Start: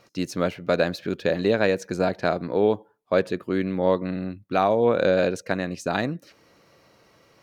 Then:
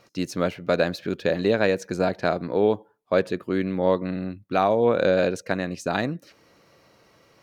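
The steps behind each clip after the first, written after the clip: no audible change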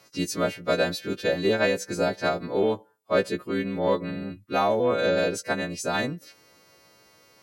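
partials quantised in pitch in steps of 2 st; Chebyshev shaper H 5 -33 dB, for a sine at -6.5 dBFS; harmonic-percussive split harmonic -4 dB

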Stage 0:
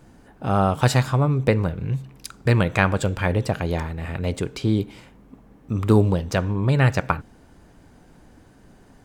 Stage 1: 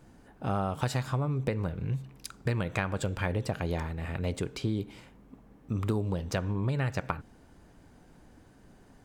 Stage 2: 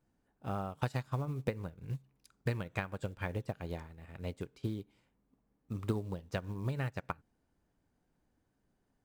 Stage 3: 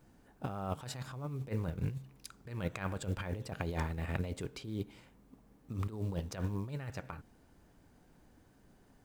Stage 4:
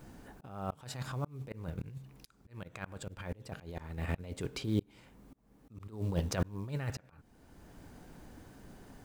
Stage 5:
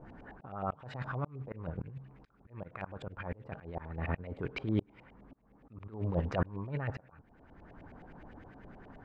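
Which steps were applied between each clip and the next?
compression 10:1, threshold -20 dBFS, peak gain reduction 9.5 dB; trim -5.5 dB
short-mantissa float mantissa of 4-bit; upward expansion 2.5:1, over -38 dBFS; trim -1.5 dB
compressor with a negative ratio -45 dBFS, ratio -1; trim +7 dB
slow attack 725 ms; trim +10.5 dB
LFO low-pass saw up 9.6 Hz 600–2700 Hz

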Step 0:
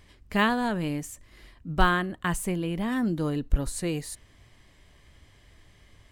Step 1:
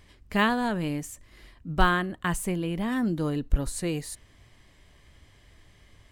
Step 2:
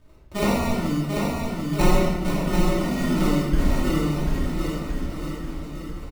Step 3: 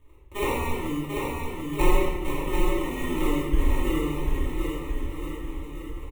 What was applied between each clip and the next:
no audible change
sample-and-hold 27×; on a send: bouncing-ball echo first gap 740 ms, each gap 0.85×, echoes 5; on the sum: simulated room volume 630 m³, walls mixed, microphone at 2.7 m; trim -5 dB
static phaser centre 990 Hz, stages 8

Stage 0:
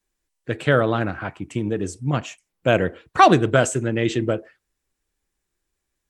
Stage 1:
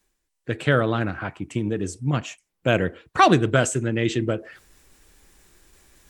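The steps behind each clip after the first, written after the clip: reverse; upward compressor, threshold -35 dBFS; reverse; dynamic bell 690 Hz, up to -4 dB, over -30 dBFS, Q 0.81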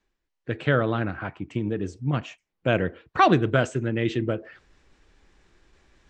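Gaussian low-pass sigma 1.7 samples; trim -2 dB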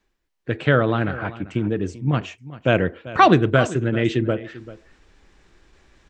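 delay 391 ms -17 dB; trim +4.5 dB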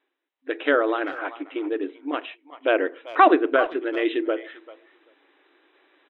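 FFT band-pass 260–4000 Hz; speakerphone echo 390 ms, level -19 dB; low-pass that closes with the level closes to 2.3 kHz, closed at -14.5 dBFS; trim -1 dB

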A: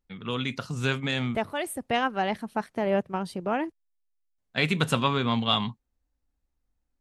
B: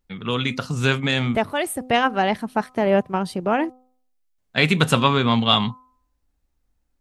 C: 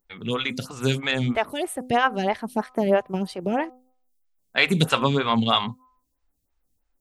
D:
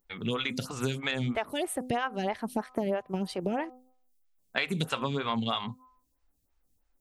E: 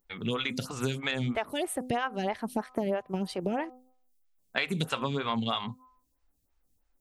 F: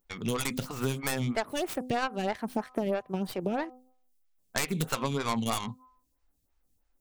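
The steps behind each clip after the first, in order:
de-hum 254.5 Hz, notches 5; trim +7 dB
treble shelf 5.7 kHz +9 dB; lamp-driven phase shifter 3.1 Hz
compression 6:1, threshold -27 dBFS, peak gain reduction 12.5 dB
no audible change
tracing distortion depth 0.47 ms

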